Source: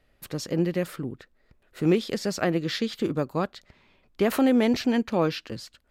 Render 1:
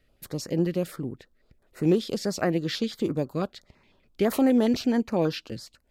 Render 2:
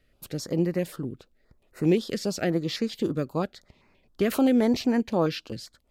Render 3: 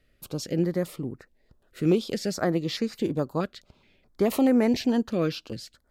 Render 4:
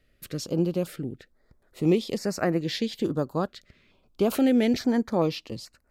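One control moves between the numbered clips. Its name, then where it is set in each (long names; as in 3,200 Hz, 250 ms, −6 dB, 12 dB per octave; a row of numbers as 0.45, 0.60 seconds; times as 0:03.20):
notch on a step sequencer, speed: 12, 7.6, 4.7, 2.3 Hertz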